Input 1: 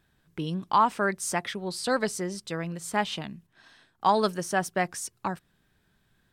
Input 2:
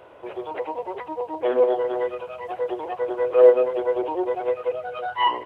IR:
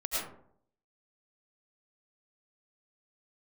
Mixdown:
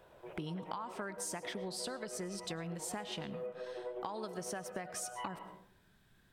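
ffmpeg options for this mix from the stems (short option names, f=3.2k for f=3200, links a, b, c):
-filter_complex "[0:a]acompressor=threshold=-30dB:ratio=6,volume=-0.5dB,asplit=2[a][b];[b]volume=-20dB[c];[1:a]acompressor=threshold=-25dB:ratio=6,volume=-17dB,asplit=2[d][e];[e]volume=-7.5dB[f];[2:a]atrim=start_sample=2205[g];[c][f]amix=inputs=2:normalize=0[h];[h][g]afir=irnorm=-1:irlink=0[i];[a][d][i]amix=inputs=3:normalize=0,acompressor=threshold=-38dB:ratio=6"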